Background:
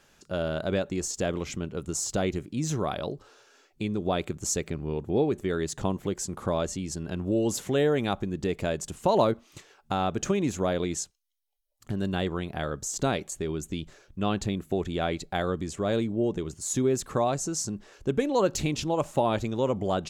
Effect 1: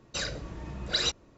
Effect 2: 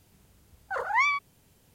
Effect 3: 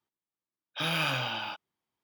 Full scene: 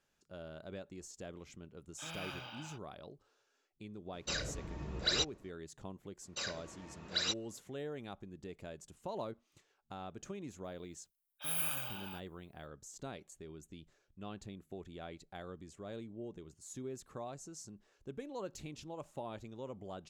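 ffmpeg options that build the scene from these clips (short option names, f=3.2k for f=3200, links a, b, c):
-filter_complex "[3:a]asplit=2[a][b];[1:a]asplit=2[c][d];[0:a]volume=-19dB[e];[d]highpass=f=470:p=1[f];[b]aexciter=amount=15.7:drive=5.2:freq=7.7k[g];[a]atrim=end=2.03,asetpts=PTS-STARTPTS,volume=-16dB,afade=t=in:d=0.004:c=hsin,afade=t=out:st=2.026:d=0.004:c=hsin,adelay=1220[h];[c]atrim=end=1.37,asetpts=PTS-STARTPTS,volume=-4.5dB,afade=t=in:d=0.004:c=hsin,afade=t=out:st=1.366:d=0.004:c=hsin,adelay=182133S[i];[f]atrim=end=1.37,asetpts=PTS-STARTPTS,volume=-6.5dB,afade=t=in:d=0.004:c=hsin,afade=t=out:st=1.366:d=0.004:c=hsin,adelay=6220[j];[g]atrim=end=2.03,asetpts=PTS-STARTPTS,volume=-14.5dB,afade=t=in:d=0.004:c=hsin,afade=t=out:st=2.026:d=0.004:c=hsin,adelay=10640[k];[e][h][i][j][k]amix=inputs=5:normalize=0"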